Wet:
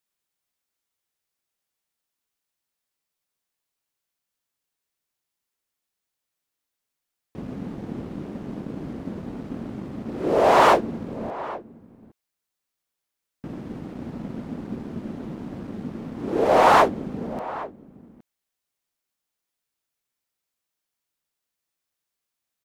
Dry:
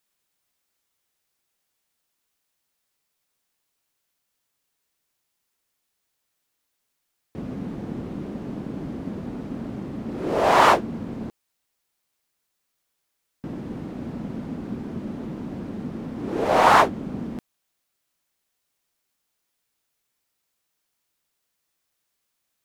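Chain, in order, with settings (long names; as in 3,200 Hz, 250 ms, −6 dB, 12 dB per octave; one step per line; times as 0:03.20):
dynamic equaliser 480 Hz, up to +6 dB, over −33 dBFS, Q 0.89
leveller curve on the samples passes 1
slap from a distant wall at 140 metres, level −16 dB
level −5 dB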